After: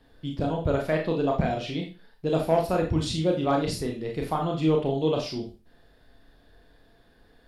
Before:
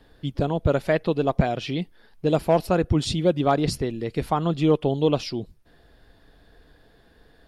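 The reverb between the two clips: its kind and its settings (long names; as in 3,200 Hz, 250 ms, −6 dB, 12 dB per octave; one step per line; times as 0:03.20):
four-comb reverb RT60 0.32 s, combs from 25 ms, DRR 0.5 dB
level −5.5 dB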